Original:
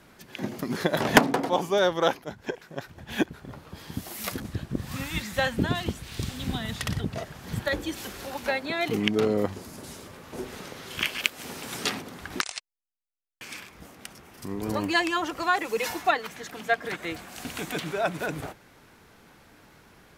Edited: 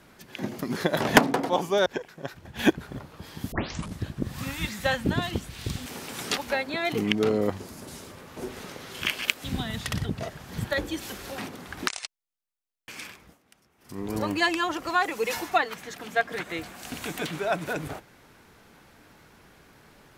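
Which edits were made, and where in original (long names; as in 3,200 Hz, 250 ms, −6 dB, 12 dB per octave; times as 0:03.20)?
0:01.86–0:02.39: remove
0:03.12–0:03.52: clip gain +4.5 dB
0:04.05: tape start 0.45 s
0:06.39–0:08.33: swap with 0:11.40–0:11.91
0:13.64–0:14.57: duck −16.5 dB, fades 0.27 s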